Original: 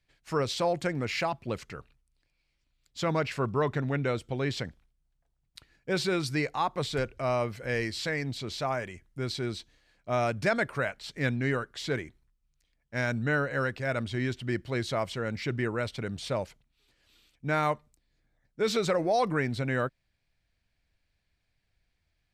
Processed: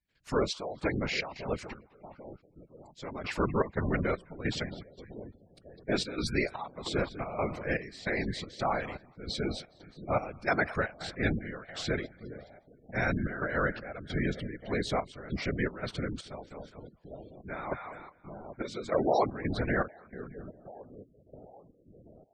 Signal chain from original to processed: on a send: split-band echo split 720 Hz, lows 0.793 s, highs 0.206 s, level -14.5 dB; on the sum: step gate "..xxxxx....xxxxx" 199 bpm -12 dB; whisperiser; spectral gate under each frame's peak -25 dB strong

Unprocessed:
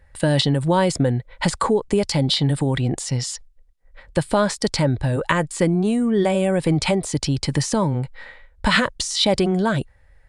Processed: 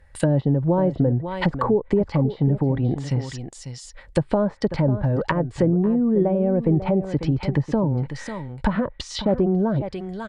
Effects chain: echo 0.545 s -12 dB; treble ducked by the level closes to 640 Hz, closed at -15.5 dBFS

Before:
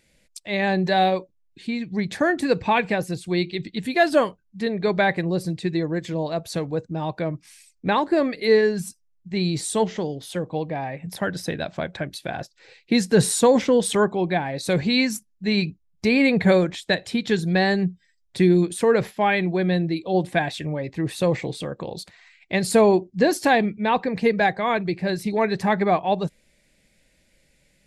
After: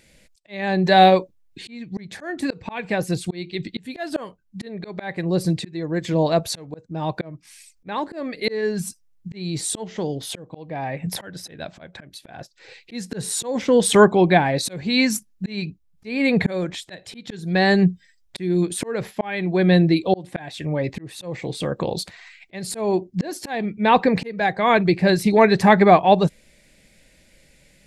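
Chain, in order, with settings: auto swell 0.585 s; gain +7.5 dB

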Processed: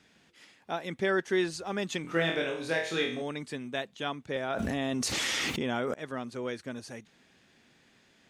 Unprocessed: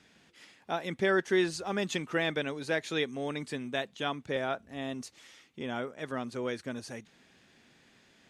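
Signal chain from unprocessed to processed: 2.02–3.22 flutter echo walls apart 4.1 m, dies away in 0.48 s; 4.5–5.94 fast leveller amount 100%; gain -1 dB

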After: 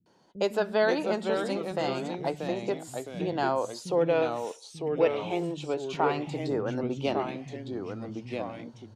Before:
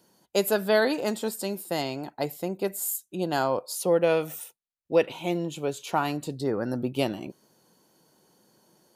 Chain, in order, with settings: bell 880 Hz +2 dB; in parallel at +1.5 dB: compressor, threshold -32 dBFS, peak gain reduction 16 dB; on the sum: bands offset in time lows, highs 60 ms, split 210 Hz; echoes that change speed 0.418 s, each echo -2 st, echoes 2, each echo -6 dB; air absorption 130 m; gain -4.5 dB

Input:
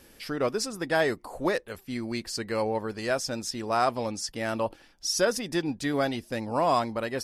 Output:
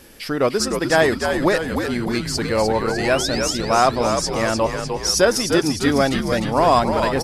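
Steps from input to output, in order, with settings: painted sound rise, 2.44–3.54, 430–7500 Hz -40 dBFS; frequency-shifting echo 0.302 s, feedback 59%, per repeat -80 Hz, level -6 dB; gain +8.5 dB

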